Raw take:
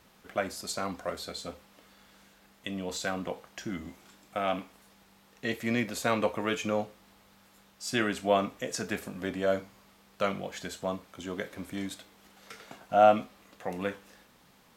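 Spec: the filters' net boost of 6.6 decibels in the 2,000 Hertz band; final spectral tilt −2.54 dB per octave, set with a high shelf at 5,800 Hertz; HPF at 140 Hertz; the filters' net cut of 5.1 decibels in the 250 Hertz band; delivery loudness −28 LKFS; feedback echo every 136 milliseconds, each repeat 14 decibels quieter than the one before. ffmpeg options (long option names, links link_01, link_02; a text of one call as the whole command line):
ffmpeg -i in.wav -af "highpass=140,equalizer=frequency=250:width_type=o:gain=-6,equalizer=frequency=2000:width_type=o:gain=8,highshelf=frequency=5800:gain=4,aecho=1:1:136|272:0.2|0.0399,volume=2.5dB" out.wav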